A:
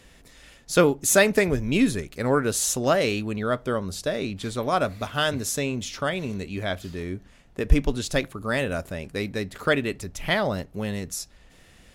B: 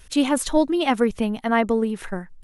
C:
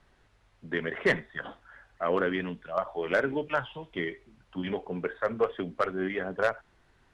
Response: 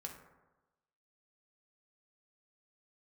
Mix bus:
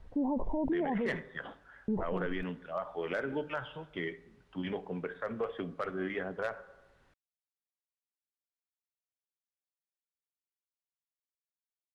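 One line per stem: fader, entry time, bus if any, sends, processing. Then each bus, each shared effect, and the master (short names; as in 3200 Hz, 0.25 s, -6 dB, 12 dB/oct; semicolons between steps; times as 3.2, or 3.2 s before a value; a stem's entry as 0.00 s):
off
-4.0 dB, 0.00 s, muted 1.09–1.88, no send, steep low-pass 1000 Hz 96 dB/oct; limiter -16.5 dBFS, peak gain reduction 9 dB; sustainer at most 31 dB/s
-5.5 dB, 0.00 s, send -9 dB, dry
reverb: on, RT60 1.1 s, pre-delay 3 ms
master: limiter -25 dBFS, peak gain reduction 10.5 dB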